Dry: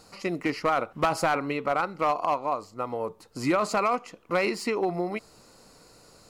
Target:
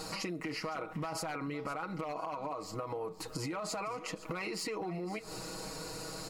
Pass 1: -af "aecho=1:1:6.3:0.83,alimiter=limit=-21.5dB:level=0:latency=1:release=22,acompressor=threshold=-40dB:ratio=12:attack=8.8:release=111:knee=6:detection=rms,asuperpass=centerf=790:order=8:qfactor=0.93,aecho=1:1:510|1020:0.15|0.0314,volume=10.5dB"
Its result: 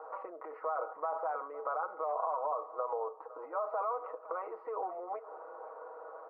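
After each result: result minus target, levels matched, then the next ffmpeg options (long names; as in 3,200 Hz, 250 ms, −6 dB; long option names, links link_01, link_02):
downward compressor: peak gain reduction −5.5 dB; 1,000 Hz band +4.0 dB
-af "aecho=1:1:6.3:0.83,alimiter=limit=-21.5dB:level=0:latency=1:release=22,acompressor=threshold=-46dB:ratio=12:attack=8.8:release=111:knee=6:detection=rms,asuperpass=centerf=790:order=8:qfactor=0.93,aecho=1:1:510|1020:0.15|0.0314,volume=10.5dB"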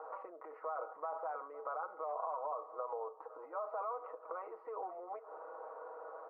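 1,000 Hz band +4.0 dB
-af "aecho=1:1:6.3:0.83,alimiter=limit=-21.5dB:level=0:latency=1:release=22,acompressor=threshold=-46dB:ratio=12:attack=8.8:release=111:knee=6:detection=rms,aecho=1:1:510|1020:0.15|0.0314,volume=10.5dB"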